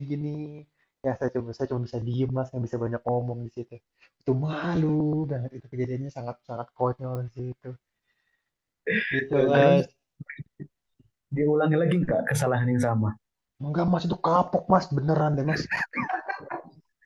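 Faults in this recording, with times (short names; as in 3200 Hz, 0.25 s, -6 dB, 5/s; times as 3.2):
7.15 pop -23 dBFS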